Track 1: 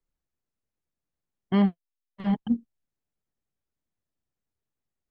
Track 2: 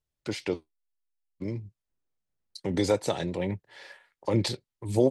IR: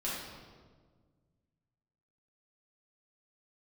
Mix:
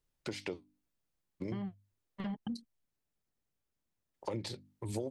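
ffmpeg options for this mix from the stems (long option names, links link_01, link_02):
-filter_complex "[0:a]alimiter=limit=-23.5dB:level=0:latency=1:release=110,volume=0.5dB[link_01];[1:a]bandreject=frequency=50:width_type=h:width=6,bandreject=frequency=100:width_type=h:width=6,bandreject=frequency=150:width_type=h:width=6,bandreject=frequency=200:width_type=h:width=6,bandreject=frequency=250:width_type=h:width=6,bandreject=frequency=300:width_type=h:width=6,volume=0dB,asplit=3[link_02][link_03][link_04];[link_02]atrim=end=2.62,asetpts=PTS-STARTPTS,afade=type=out:start_time=2.616:duration=0.004:curve=hsin[link_05];[link_03]atrim=start=2.62:end=4.14,asetpts=PTS-STARTPTS,volume=0[link_06];[link_04]atrim=start=4.14,asetpts=PTS-STARTPTS,afade=type=in:duration=0.004:curve=hsin[link_07];[link_05][link_06][link_07]concat=n=3:v=0:a=1[link_08];[link_01][link_08]amix=inputs=2:normalize=0,acompressor=threshold=-36dB:ratio=6"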